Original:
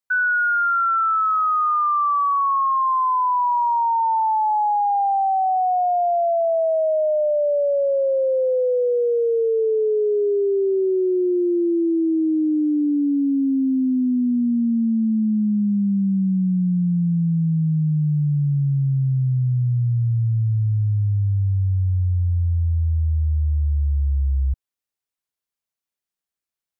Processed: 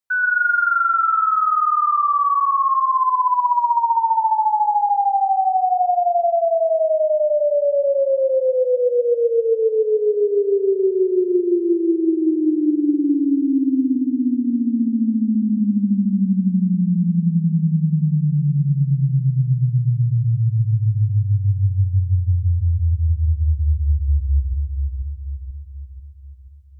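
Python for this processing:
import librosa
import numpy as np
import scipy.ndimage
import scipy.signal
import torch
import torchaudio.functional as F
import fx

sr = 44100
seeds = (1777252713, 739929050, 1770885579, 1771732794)

y = fx.cheby1_bandstop(x, sr, low_hz=230.0, high_hz=1000.0, order=2, at=(13.95, 15.58), fade=0.02)
y = fx.echo_split(y, sr, split_hz=350.0, low_ms=486, high_ms=124, feedback_pct=52, wet_db=-4.5)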